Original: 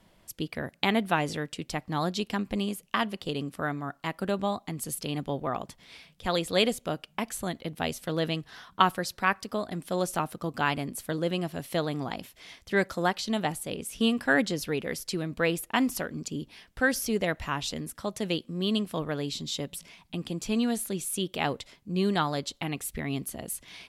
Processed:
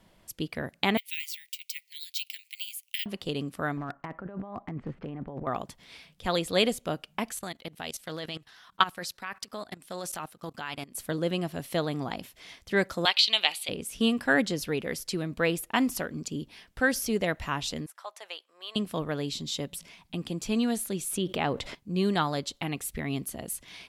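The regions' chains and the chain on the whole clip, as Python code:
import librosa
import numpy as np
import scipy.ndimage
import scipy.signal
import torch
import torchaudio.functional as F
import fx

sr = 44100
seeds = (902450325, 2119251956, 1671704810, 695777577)

y = fx.chain(x, sr, fx.steep_highpass(hz=2100.0, slope=72),
    fx.resample_bad(factor=2, down='none', up='zero_stuff'), at=(0.97, 3.06))
y = fx.chain(y, sr, fx.lowpass(hz=1900.0, slope=24),
    fx.over_compress(threshold_db=-37.0, ratio=-1.0),
    fx.overload_stage(gain_db=28.5), at=(3.77, 5.47))
y = fx.chain(y, sr, fx.tilt_shelf(db=-5.0, hz=820.0),
    fx.level_steps(step_db=18),
    fx.doppler_dist(depth_ms=0.11), at=(7.32, 10.97))
y = fx.chain(y, sr, fx.highpass(hz=780.0, slope=12),
    fx.band_shelf(hz=3200.0, db=15.5, octaves=1.3), at=(13.05, 13.69))
y = fx.chain(y, sr, fx.highpass(hz=760.0, slope=24),
    fx.high_shelf(hz=2300.0, db=-10.0), at=(17.86, 18.76))
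y = fx.chain(y, sr, fx.high_shelf(hz=3800.0, db=-10.5),
    fx.env_flatten(amount_pct=50), at=(21.11, 21.75))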